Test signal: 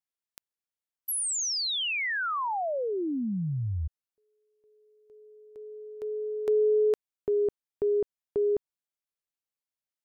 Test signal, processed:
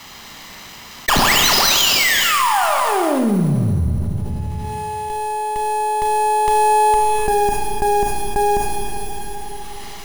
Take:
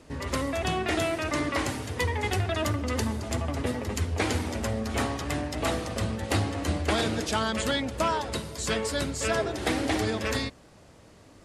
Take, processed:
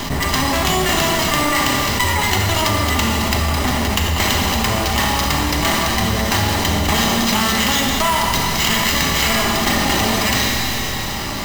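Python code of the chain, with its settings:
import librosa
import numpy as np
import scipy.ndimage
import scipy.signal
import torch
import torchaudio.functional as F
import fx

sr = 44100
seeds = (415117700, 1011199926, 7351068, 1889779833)

y = fx.lower_of_two(x, sr, delay_ms=1.0)
y = fx.high_shelf(y, sr, hz=4700.0, db=11.0)
y = y + 0.37 * np.pad(y, (int(5.0 * sr / 1000.0), 0))[:len(y)]
y = fx.sample_hold(y, sr, seeds[0], rate_hz=10000.0, jitter_pct=0)
y = fx.rev_schroeder(y, sr, rt60_s=1.8, comb_ms=27, drr_db=2.0)
y = fx.env_flatten(y, sr, amount_pct=70)
y = y * librosa.db_to_amplitude(5.5)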